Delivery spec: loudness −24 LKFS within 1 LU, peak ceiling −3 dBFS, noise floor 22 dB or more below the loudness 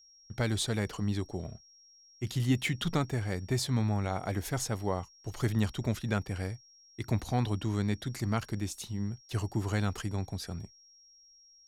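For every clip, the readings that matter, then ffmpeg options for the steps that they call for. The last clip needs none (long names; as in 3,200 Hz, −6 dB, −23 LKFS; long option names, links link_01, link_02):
interfering tone 5,600 Hz; level of the tone −57 dBFS; integrated loudness −33.0 LKFS; sample peak −17.0 dBFS; target loudness −24.0 LKFS
→ -af "bandreject=frequency=5600:width=30"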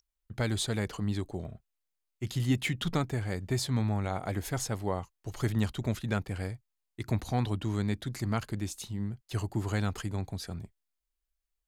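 interfering tone none found; integrated loudness −33.0 LKFS; sample peak −17.0 dBFS; target loudness −24.0 LKFS
→ -af "volume=9dB"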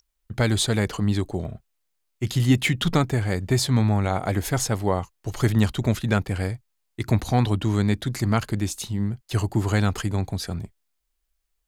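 integrated loudness −24.0 LKFS; sample peak −8.0 dBFS; background noise floor −75 dBFS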